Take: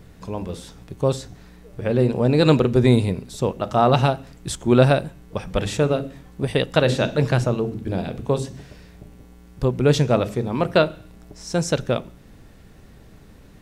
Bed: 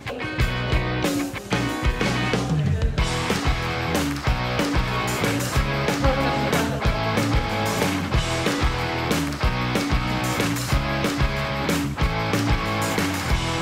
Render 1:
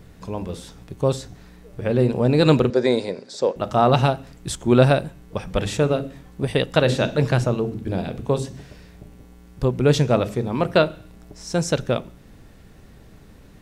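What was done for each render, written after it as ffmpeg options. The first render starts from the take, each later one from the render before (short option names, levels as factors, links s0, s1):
-filter_complex "[0:a]asettb=1/sr,asplit=3[s0][s1][s2];[s0]atrim=end=2.704[s3];[s1]atrim=start=2.7:end=3.56,asetpts=PTS-STARTPTS,afade=t=in:d=0.004:c=qsin,afade=t=out:st=0.856:d=0.004:c=qsin,highpass=340,equalizer=f=540:t=q:w=4:g=8,equalizer=f=1200:t=q:w=4:g=-4,equalizer=f=1600:t=q:w=4:g=5,equalizer=f=2800:t=q:w=4:g=-7,equalizer=f=4800:t=q:w=4:g=8,lowpass=f=7700:w=0.5412,lowpass=f=7700:w=1.3066[s4];[s2]atrim=start=3.556[s5];[s3][s4]acrossfade=d=0.004:c1=hsin:c2=qsin[s6];[s6][s5]acrossfade=d=0.004:c1=qsin:c2=hsin"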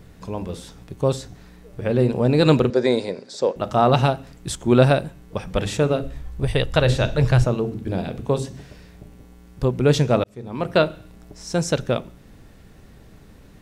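-filter_complex "[0:a]asplit=3[s0][s1][s2];[s0]afade=t=out:st=6.02:d=0.02[s3];[s1]asubboost=boost=12:cutoff=68,afade=t=in:st=6.02:d=0.02,afade=t=out:st=7.45:d=0.02[s4];[s2]afade=t=in:st=7.45:d=0.02[s5];[s3][s4][s5]amix=inputs=3:normalize=0,asplit=2[s6][s7];[s6]atrim=end=10.24,asetpts=PTS-STARTPTS,afade=t=out:st=10.236:d=0.004:c=hsin[s8];[s7]atrim=start=10.24,asetpts=PTS-STARTPTS,afade=t=in:d=0.59[s9];[s8][s9]concat=n=2:v=0:a=1"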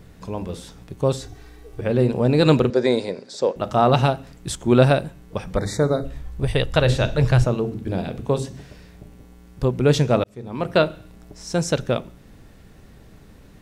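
-filter_complex "[0:a]asettb=1/sr,asplit=3[s0][s1][s2];[s0]atrim=end=1.214[s3];[s1]atrim=start=1.21:end=1.81,asetpts=PTS-STARTPTS,afade=t=in:d=0.004:c=qsin,afade=t=out:st=0.596:d=0.004:c=qsin,aecho=1:1:2.6:0.74,atrim=end_sample=26460[s4];[s2]atrim=start=1.806[s5];[s3][s4]acrossfade=d=0.004:c1=hsin:c2=qsin[s6];[s6][s5]acrossfade=d=0.004:c1=qsin:c2=hsin,asettb=1/sr,asplit=3[s7][s8][s9];[s7]atrim=end=5.564[s10];[s8]atrim=start=5.56:end=6.05,asetpts=PTS-STARTPTS,afade=t=in:d=0.004:c=qsin,afade=t=out:st=0.486:d=0.004:c=qsin,asuperstop=centerf=2900:order=20:qfactor=2.2[s11];[s9]atrim=start=6.046[s12];[s10][s11]acrossfade=d=0.004:c1=hsin:c2=qsin[s13];[s13][s12]acrossfade=d=0.004:c1=qsin:c2=hsin"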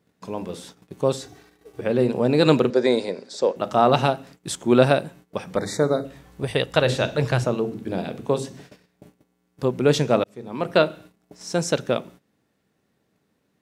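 -af "agate=range=0.126:threshold=0.00891:ratio=16:detection=peak,highpass=180"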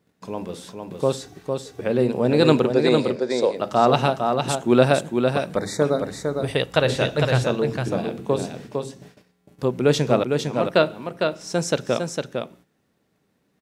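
-af "aecho=1:1:455:0.562"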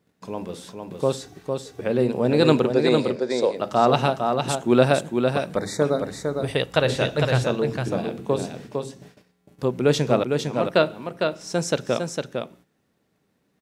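-af "volume=0.891"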